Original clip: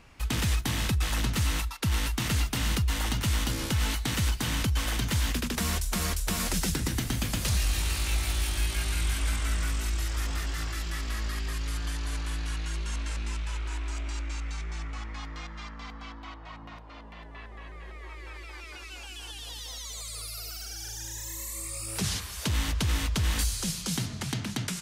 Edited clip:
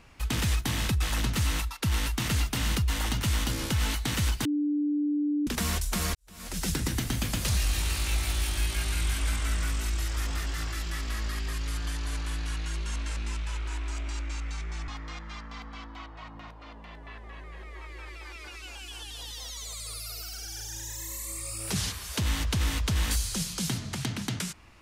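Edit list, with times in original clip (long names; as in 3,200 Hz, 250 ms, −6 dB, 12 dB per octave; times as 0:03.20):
0:04.45–0:05.47: beep over 294 Hz −24 dBFS
0:06.15–0:06.71: fade in quadratic
0:14.88–0:15.16: remove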